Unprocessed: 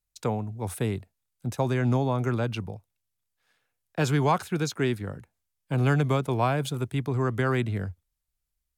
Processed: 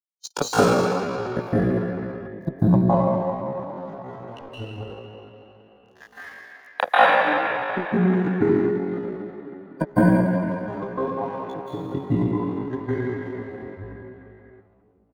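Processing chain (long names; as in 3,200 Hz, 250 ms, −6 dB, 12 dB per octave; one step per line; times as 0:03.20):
camcorder AGC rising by 27 dB per second
hum removal 98.83 Hz, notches 3
downward compressor 8 to 1, threshold −37 dBFS, peak gain reduction 21 dB
transient designer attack +9 dB, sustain −5 dB
dead-zone distortion −36 dBFS
high-shelf EQ 5,700 Hz +7.5 dB
repeating echo 104 ms, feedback 33%, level −13.5 dB
noise reduction from a noise print of the clip's start 12 dB
parametric band 930 Hz +4 dB 2.1 octaves
convolution reverb RT60 2.2 s, pre-delay 90 ms, DRR −12.5 dB
tempo change 0.58×
level −2.5 dB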